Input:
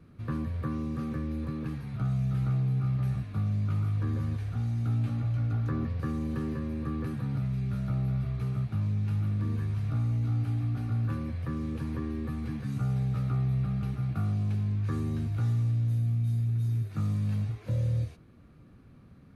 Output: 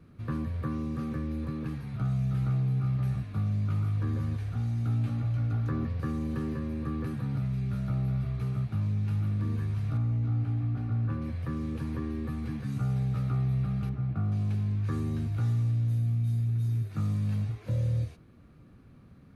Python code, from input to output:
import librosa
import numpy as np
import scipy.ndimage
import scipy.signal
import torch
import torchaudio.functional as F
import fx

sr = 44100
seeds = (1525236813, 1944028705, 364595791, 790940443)

y = fx.lowpass(x, sr, hz=2000.0, slope=6, at=(9.97, 11.22))
y = fx.lowpass(y, sr, hz=1300.0, slope=6, at=(13.89, 14.32))